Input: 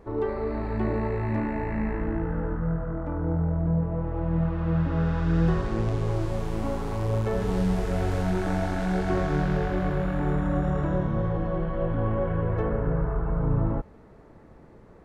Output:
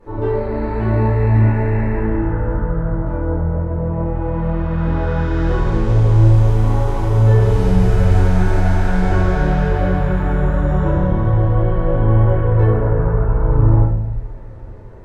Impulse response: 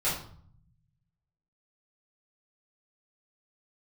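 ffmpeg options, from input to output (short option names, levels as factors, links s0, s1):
-filter_complex "[1:a]atrim=start_sample=2205,asetrate=30429,aresample=44100[s0];[0:a][s0]afir=irnorm=-1:irlink=0,volume=0.631"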